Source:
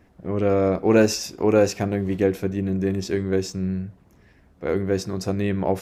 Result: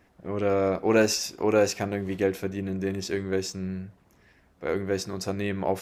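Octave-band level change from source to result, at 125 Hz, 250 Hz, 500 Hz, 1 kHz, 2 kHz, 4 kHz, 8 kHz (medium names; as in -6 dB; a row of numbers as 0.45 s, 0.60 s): -7.5 dB, -6.0 dB, -4.0 dB, -2.0 dB, -0.5 dB, 0.0 dB, 0.0 dB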